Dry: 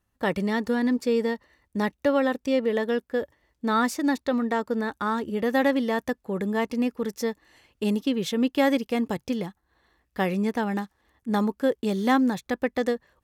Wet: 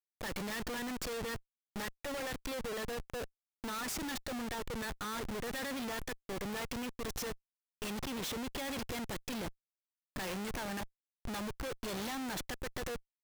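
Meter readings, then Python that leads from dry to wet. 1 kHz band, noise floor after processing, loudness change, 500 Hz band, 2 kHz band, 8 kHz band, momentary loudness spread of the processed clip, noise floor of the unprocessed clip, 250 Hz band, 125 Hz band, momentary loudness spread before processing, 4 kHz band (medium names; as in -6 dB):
-13.5 dB, under -85 dBFS, -14.0 dB, -16.0 dB, -10.0 dB, 0.0 dB, 5 LU, -75 dBFS, -17.0 dB, -10.5 dB, 8 LU, -5.0 dB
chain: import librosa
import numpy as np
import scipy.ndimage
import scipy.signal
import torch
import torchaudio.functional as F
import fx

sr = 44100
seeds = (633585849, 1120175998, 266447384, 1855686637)

y = scipy.signal.sosfilt(scipy.signal.butter(2, 42.0, 'highpass', fs=sr, output='sos'), x)
y = fx.tilt_eq(y, sr, slope=4.0)
y = fx.schmitt(y, sr, flips_db=-35.5)
y = F.gain(torch.from_numpy(y), -9.0).numpy()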